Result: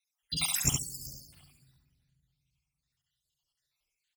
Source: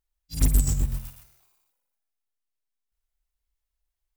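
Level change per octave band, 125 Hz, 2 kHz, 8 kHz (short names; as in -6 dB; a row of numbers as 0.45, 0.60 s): -12.0, +7.0, +2.0 dB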